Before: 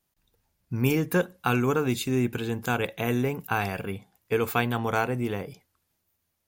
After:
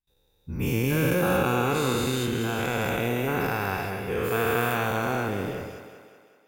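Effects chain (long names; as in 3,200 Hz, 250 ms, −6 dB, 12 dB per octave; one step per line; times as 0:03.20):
every bin's largest magnitude spread in time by 480 ms
parametric band 560 Hz +2.5 dB 0.36 octaves
noise gate with hold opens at −53 dBFS
low-shelf EQ 140 Hz +7 dB
on a send: feedback echo with a high-pass in the loop 189 ms, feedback 56%, high-pass 170 Hz, level −9 dB
on the sum: level −8.5 dB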